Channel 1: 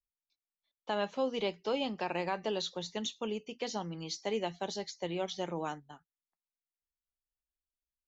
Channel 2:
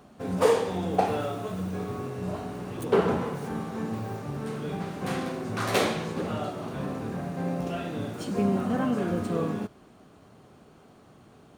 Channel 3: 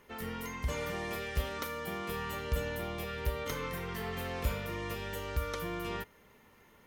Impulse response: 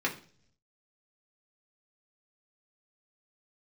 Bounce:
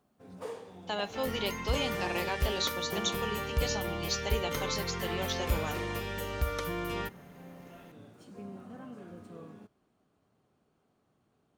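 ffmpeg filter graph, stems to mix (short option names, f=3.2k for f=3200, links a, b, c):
-filter_complex "[0:a]highshelf=f=2.2k:g=11.5,volume=-3dB[a];[1:a]volume=-19.5dB[b];[2:a]adelay=1050,volume=2.5dB[c];[a][b][c]amix=inputs=3:normalize=0"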